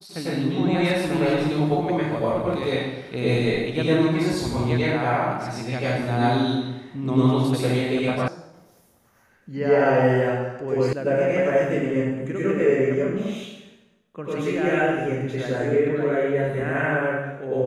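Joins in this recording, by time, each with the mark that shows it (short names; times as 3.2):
8.28 sound cut off
10.93 sound cut off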